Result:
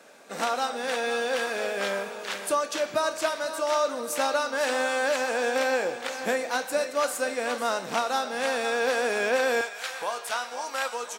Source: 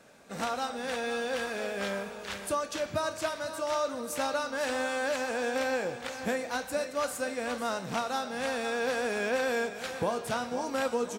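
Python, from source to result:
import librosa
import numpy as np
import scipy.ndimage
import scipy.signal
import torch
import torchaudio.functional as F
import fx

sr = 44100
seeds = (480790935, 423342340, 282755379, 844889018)

y = fx.highpass(x, sr, hz=fx.steps((0.0, 310.0), (9.61, 900.0)), slope=12)
y = y * 10.0 ** (5.5 / 20.0)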